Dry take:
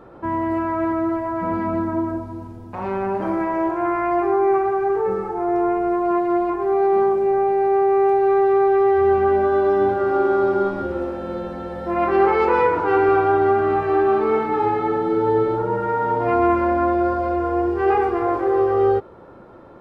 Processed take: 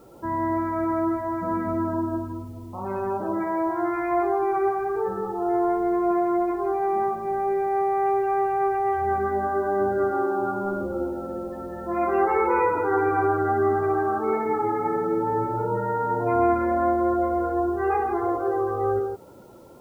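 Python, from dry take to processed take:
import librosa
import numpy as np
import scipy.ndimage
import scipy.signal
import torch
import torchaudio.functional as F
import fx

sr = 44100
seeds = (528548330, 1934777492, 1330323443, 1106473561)

y = fx.spec_topn(x, sr, count=32)
y = fx.quant_dither(y, sr, seeds[0], bits=10, dither='triangular')
y = fx.echo_multitap(y, sr, ms=(60, 162), db=(-10.0, -8.0))
y = y * librosa.db_to_amplitude(-4.5)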